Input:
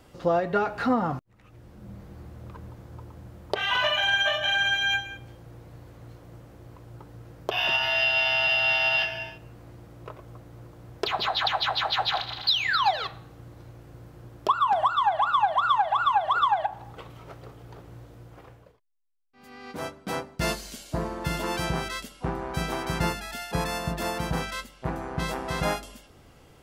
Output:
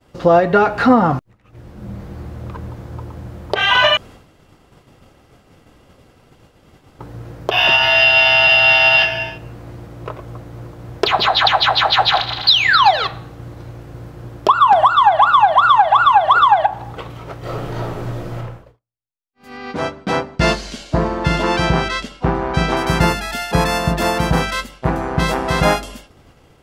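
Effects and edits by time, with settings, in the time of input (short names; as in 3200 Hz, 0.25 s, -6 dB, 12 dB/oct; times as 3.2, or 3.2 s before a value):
3.97–6.99 room tone
17.39–18.36 reverb throw, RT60 0.81 s, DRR -9.5 dB
19.57–22.77 LPF 5800 Hz
whole clip: expander -46 dBFS; high shelf 7500 Hz -6 dB; maximiser +13.5 dB; gain -1 dB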